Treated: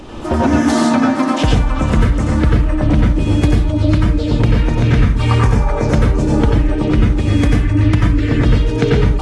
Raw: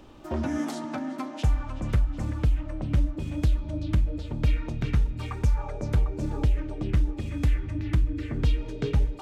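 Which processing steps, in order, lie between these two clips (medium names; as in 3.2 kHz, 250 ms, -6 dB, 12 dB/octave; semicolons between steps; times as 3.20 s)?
dynamic bell 270 Hz, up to +5 dB, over -46 dBFS, Q 7.5; compression 16:1, threshold -27 dBFS, peak gain reduction 10.5 dB; reverberation RT60 0.40 s, pre-delay 83 ms, DRR -2 dB; loudness maximiser +18 dB; trim -2 dB; AAC 32 kbps 24 kHz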